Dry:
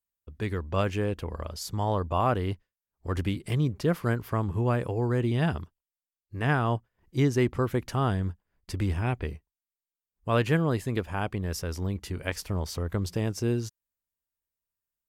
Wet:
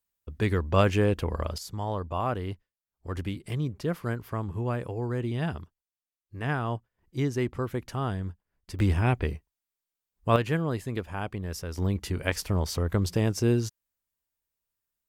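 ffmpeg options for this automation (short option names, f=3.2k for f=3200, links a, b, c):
-af "asetnsamples=n=441:p=0,asendcmd='1.58 volume volume -4dB;8.79 volume volume 4dB;10.36 volume volume -3dB;11.78 volume volume 3.5dB',volume=5dB"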